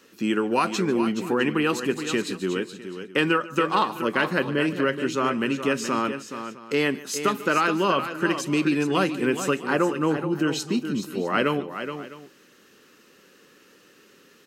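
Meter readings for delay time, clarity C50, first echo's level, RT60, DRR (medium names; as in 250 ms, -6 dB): 146 ms, no reverb, -19.0 dB, no reverb, no reverb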